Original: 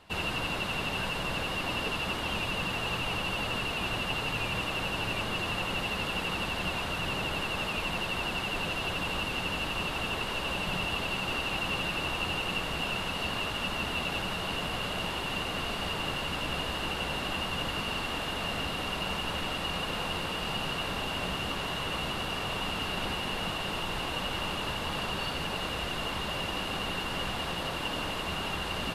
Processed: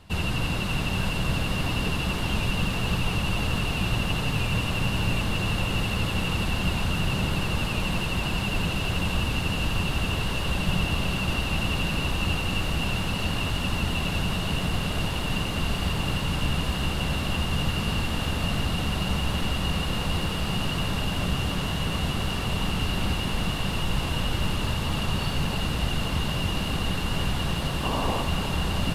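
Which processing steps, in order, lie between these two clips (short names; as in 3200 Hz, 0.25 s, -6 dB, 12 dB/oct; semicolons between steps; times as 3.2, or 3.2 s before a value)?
tone controls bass +13 dB, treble +5 dB; painted sound noise, 27.83–28.23, 220–1200 Hz -30 dBFS; lo-fi delay 0.296 s, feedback 80%, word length 9-bit, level -10 dB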